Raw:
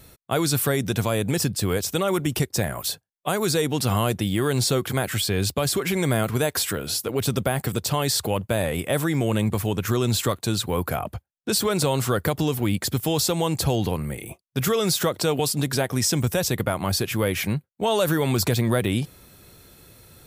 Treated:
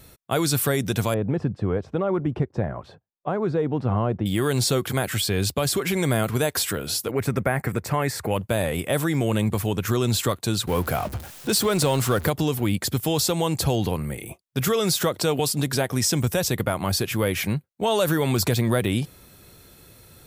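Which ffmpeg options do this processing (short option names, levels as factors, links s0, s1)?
-filter_complex "[0:a]asettb=1/sr,asplit=3[s0][s1][s2];[s0]atrim=end=1.144[s3];[s1]atrim=start=1.14:end=4.26,asetpts=PTS-STARTPTS,afade=t=in:d=0.004:c=qsin,afade=t=out:st=3.116:d=0.004:c=qsin,lowpass=1100[s4];[s2]atrim=start=4.256[s5];[s3][s4]acrossfade=d=0.004:c1=hsin:c2=qsin[s6];[s6][s5]acrossfade=d=0.004:c1=qsin:c2=hsin,asettb=1/sr,asplit=3[s7][s8][s9];[s7]atrim=end=7.114[s10];[s8]atrim=start=7.11:end=8.31,asetpts=PTS-STARTPTS,afade=t=in:d=0.004:c=qsin,afade=t=out:st=1.196:d=0.004:c=qsin,highshelf=f=2600:t=q:w=3:g=-7.5[s11];[s9]atrim=start=8.306[s12];[s10][s11]acrossfade=d=0.004:c1=hsin:c2=qsin[s13];[s13][s12]acrossfade=d=0.004:c1=qsin:c2=hsin,asettb=1/sr,asplit=3[s14][s15][s16];[s14]atrim=end=10.674[s17];[s15]atrim=start=10.67:end=12.3,asetpts=PTS-STARTPTS,afade=t=in:d=0.004:c=qsin,afade=t=out:st=1.626:d=0.004:c=qsin,aeval=exprs='val(0)+0.5*0.0266*sgn(val(0))':c=same[s18];[s16]atrim=start=12.296[s19];[s17][s18]acrossfade=d=0.004:c1=hsin:c2=qsin[s20];[s20][s19]acrossfade=d=0.004:c1=qsin:c2=hsin"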